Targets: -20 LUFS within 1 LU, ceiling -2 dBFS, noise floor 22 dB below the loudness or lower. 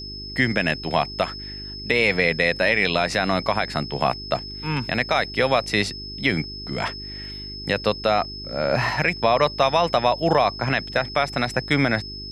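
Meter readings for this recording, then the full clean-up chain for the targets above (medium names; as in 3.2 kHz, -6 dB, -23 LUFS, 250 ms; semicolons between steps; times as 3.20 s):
hum 50 Hz; highest harmonic 400 Hz; hum level -36 dBFS; steady tone 5.2 kHz; tone level -34 dBFS; loudness -22.0 LUFS; peak level -6.0 dBFS; loudness target -20.0 LUFS
-> de-hum 50 Hz, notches 8; band-stop 5.2 kHz, Q 30; trim +2 dB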